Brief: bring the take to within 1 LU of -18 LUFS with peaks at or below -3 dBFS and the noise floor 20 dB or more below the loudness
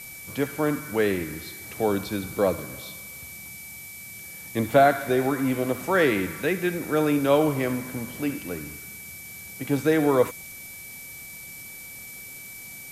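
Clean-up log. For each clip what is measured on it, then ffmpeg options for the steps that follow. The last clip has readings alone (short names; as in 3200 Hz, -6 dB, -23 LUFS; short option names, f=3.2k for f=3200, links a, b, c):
steady tone 2300 Hz; tone level -42 dBFS; noise floor -41 dBFS; noise floor target -45 dBFS; loudness -24.5 LUFS; peak -6.0 dBFS; loudness target -18.0 LUFS
-> -af "bandreject=f=2.3k:w=30"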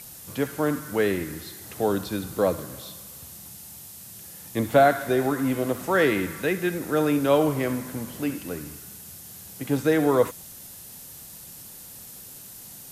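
steady tone none; noise floor -44 dBFS; noise floor target -45 dBFS
-> -af "afftdn=nr=6:nf=-44"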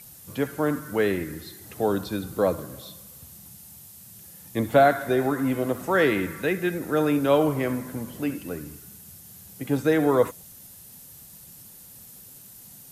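noise floor -47 dBFS; loudness -24.5 LUFS; peak -6.0 dBFS; loudness target -18.0 LUFS
-> -af "volume=6.5dB,alimiter=limit=-3dB:level=0:latency=1"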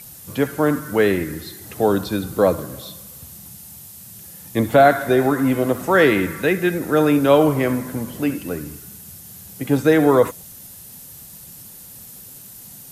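loudness -18.5 LUFS; peak -3.0 dBFS; noise floor -41 dBFS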